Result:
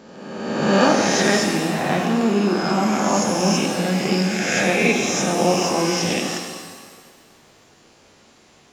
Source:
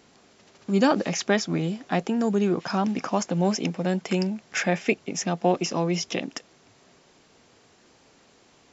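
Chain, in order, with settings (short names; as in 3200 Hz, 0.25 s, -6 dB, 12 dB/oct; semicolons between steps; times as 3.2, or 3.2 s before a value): spectral swells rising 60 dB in 1.43 s; shimmer reverb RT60 1.6 s, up +7 st, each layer -8 dB, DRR 1.5 dB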